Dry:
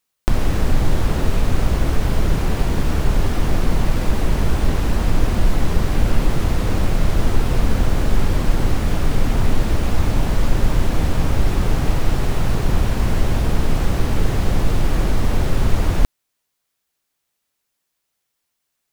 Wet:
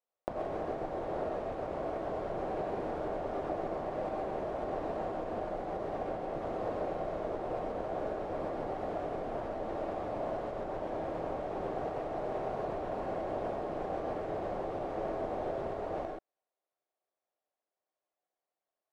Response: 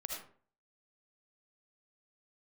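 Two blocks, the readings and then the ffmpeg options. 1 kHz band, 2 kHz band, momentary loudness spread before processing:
-7.5 dB, -18.5 dB, 1 LU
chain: -filter_complex "[0:a]acompressor=threshold=-13dB:ratio=6,bandpass=f=620:t=q:w=3:csg=0[a];[1:a]atrim=start_sample=2205,atrim=end_sample=3528,asetrate=25578,aresample=44100[b];[a][b]afir=irnorm=-1:irlink=0"

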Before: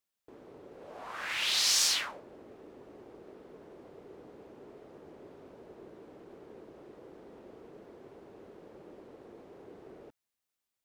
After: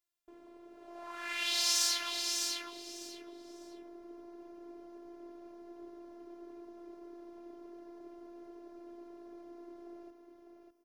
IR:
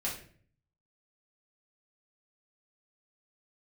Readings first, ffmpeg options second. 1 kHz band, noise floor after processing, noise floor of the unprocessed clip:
-1.0 dB, -59 dBFS, under -85 dBFS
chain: -filter_complex "[0:a]afftfilt=real='hypot(re,im)*cos(PI*b)':imag='0':win_size=512:overlap=0.75,asplit=2[a][b];[b]aecho=0:1:601|1202|1803:0.562|0.118|0.0248[c];[a][c]amix=inputs=2:normalize=0"

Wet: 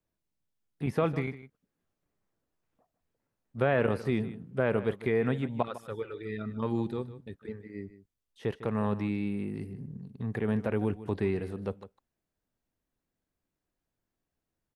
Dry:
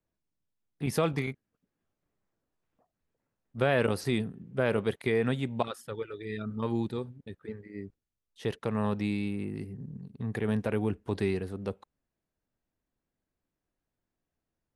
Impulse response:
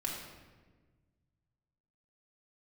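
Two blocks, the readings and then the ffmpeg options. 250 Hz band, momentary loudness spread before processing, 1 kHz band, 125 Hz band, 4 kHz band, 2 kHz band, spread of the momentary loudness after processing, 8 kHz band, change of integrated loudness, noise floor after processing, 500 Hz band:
0.0 dB, 15 LU, 0.0 dB, 0.0 dB, -7.5 dB, -1.5 dB, 15 LU, under -10 dB, 0.0 dB, under -85 dBFS, 0.0 dB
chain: -filter_complex "[0:a]acrossover=split=2600[a][b];[b]acompressor=threshold=-56dB:ratio=4:attack=1:release=60[c];[a][c]amix=inputs=2:normalize=0,asplit=2[d][e];[e]aecho=0:1:153:0.178[f];[d][f]amix=inputs=2:normalize=0"

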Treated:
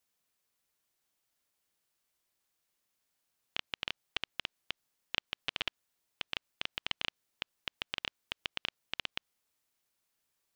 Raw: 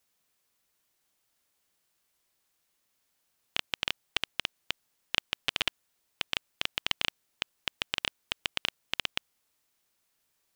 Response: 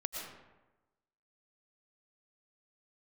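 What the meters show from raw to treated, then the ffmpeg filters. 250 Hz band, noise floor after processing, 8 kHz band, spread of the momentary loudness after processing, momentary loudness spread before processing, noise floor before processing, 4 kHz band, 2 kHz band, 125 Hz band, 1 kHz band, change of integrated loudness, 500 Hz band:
-5.5 dB, under -85 dBFS, -12.0 dB, 8 LU, 8 LU, -77 dBFS, -6.0 dB, -5.5 dB, -5.5 dB, -5.5 dB, -6.0 dB, -5.5 dB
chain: -filter_complex "[0:a]acrossover=split=5900[a][b];[b]acompressor=threshold=-55dB:ratio=4:attack=1:release=60[c];[a][c]amix=inputs=2:normalize=0,volume=-5.5dB"

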